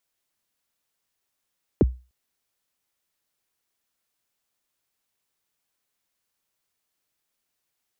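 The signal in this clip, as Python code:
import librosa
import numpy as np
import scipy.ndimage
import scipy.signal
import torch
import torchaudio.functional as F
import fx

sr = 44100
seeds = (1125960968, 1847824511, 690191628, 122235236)

y = fx.drum_kick(sr, seeds[0], length_s=0.3, level_db=-10, start_hz=500.0, end_hz=62.0, sweep_ms=28.0, decay_s=0.3, click=False)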